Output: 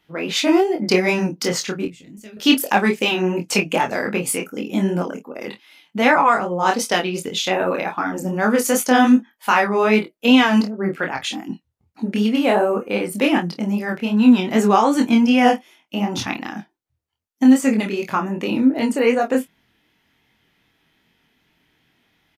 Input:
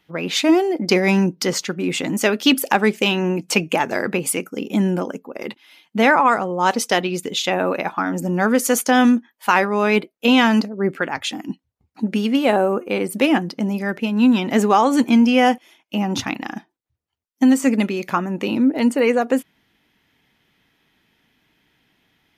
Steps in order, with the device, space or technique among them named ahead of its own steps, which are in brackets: 1.85–2.37 passive tone stack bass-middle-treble 10-0-1; double-tracked vocal (doubler 24 ms -10 dB; chorus 2.6 Hz, depth 4.4 ms); gain +2.5 dB

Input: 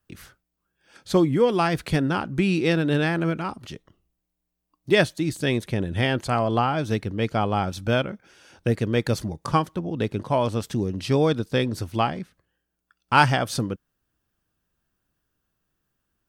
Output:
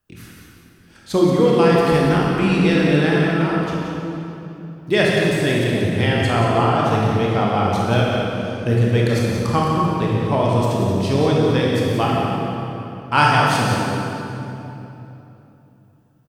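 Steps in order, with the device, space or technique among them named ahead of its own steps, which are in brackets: cave (echo 0.179 s -8.5 dB; reverb RT60 3.1 s, pre-delay 24 ms, DRR -4 dB)

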